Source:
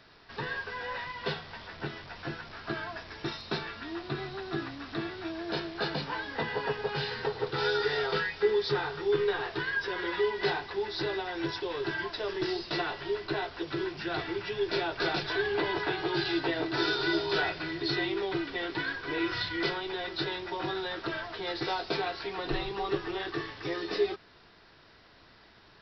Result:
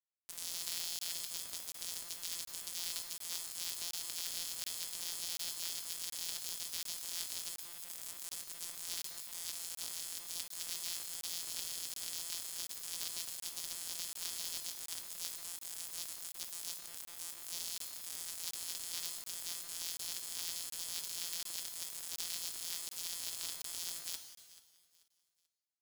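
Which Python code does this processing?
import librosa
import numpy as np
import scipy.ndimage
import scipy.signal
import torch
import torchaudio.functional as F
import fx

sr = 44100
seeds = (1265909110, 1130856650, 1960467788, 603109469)

p1 = np.r_[np.sort(x[:len(x) // 256 * 256].reshape(-1, 256), axis=1).ravel(), x[len(x) // 256 * 256:]]
p2 = scipy.signal.sosfilt(scipy.signal.butter(8, 3000.0, 'highpass', fs=sr, output='sos'), p1)
p3 = fx.high_shelf(p2, sr, hz=4100.0, db=5.0)
p4 = fx.over_compress(p3, sr, threshold_db=-47.0, ratio=-1.0)
p5 = fx.quant_dither(p4, sr, seeds[0], bits=6, dither='none')
p6 = p5 + fx.echo_feedback(p5, sr, ms=436, feedback_pct=31, wet_db=-18, dry=0)
p7 = fx.rev_gated(p6, sr, seeds[1], gate_ms=460, shape='falling', drr_db=6.5)
p8 = fx.buffer_crackle(p7, sr, first_s=0.99, period_s=0.73, block=1024, kind='zero')
y = p8 * librosa.db_to_amplitude(2.5)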